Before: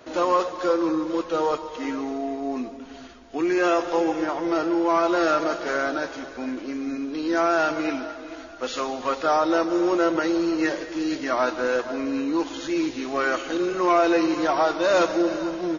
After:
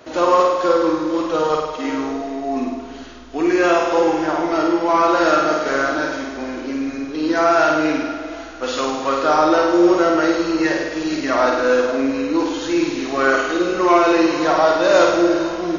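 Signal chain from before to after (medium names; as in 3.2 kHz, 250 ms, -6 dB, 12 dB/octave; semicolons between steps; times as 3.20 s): flutter echo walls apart 8.9 m, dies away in 0.93 s; trim +4 dB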